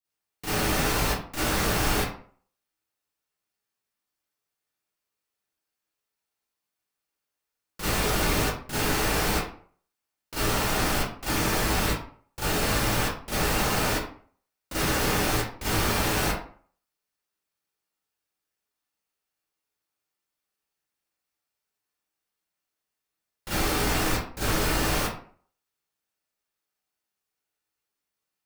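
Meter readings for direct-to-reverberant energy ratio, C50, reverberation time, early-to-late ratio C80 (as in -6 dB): -12.0 dB, -2.0 dB, 0.50 s, 5.5 dB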